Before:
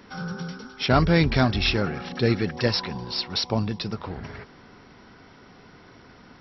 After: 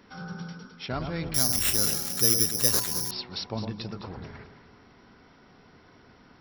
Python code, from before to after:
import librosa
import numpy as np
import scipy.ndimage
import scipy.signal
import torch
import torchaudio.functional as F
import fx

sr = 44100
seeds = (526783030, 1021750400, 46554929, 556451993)

p1 = fx.rider(x, sr, range_db=4, speed_s=0.5)
p2 = p1 + fx.echo_alternate(p1, sr, ms=106, hz=1300.0, feedback_pct=58, wet_db=-6.0, dry=0)
p3 = fx.resample_bad(p2, sr, factor=8, down='none', up='zero_stuff', at=(1.34, 3.11))
y = F.gain(torch.from_numpy(p3), -10.5).numpy()